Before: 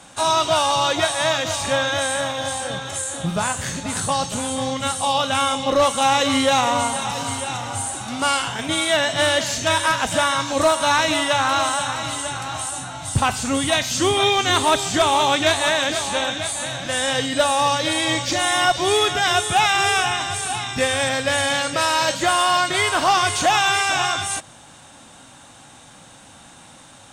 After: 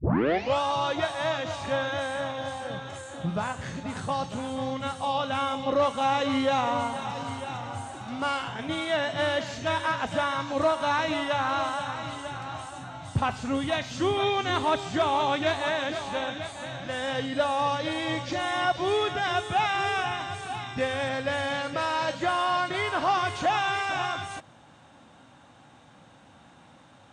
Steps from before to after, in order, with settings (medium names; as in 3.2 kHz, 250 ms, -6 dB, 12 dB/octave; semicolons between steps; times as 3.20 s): tape start-up on the opening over 0.61 s; high-pass 68 Hz; tape spacing loss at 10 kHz 22 dB; trim -5 dB